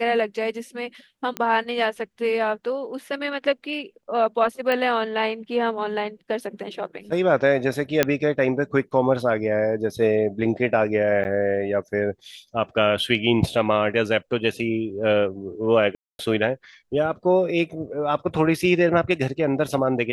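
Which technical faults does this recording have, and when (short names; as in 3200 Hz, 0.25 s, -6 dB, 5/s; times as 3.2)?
1.37 pop -12 dBFS
4.72 pop -12 dBFS
8.03 pop -3 dBFS
11.24–11.25 gap 9.8 ms
15.95–16.19 gap 0.241 s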